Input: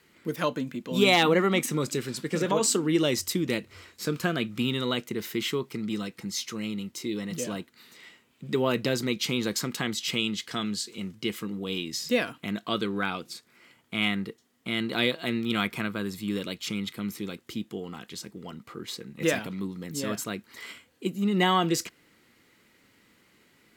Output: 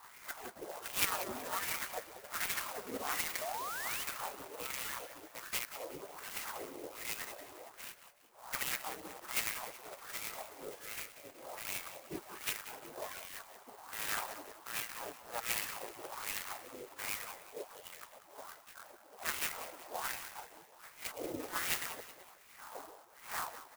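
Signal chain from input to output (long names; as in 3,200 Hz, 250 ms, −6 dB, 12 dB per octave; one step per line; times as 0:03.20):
delay that plays each chunk backwards 220 ms, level −5 dB
wind on the microphone 300 Hz −36 dBFS
gate on every frequency bin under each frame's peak −20 dB weak
0:20.28–0:20.68: compressor whose output falls as the input rises −47 dBFS, ratio −0.5
LFO wah 1.3 Hz 310–2,500 Hz, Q 2.1
0:03.41–0:04.04: sound drawn into the spectrogram rise 590–3,200 Hz −48 dBFS
on a send: echo with shifted repeats 186 ms, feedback 43%, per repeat +31 Hz, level −13 dB
on the sum: converter with an unsteady clock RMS 0.075 ms
level +7.5 dB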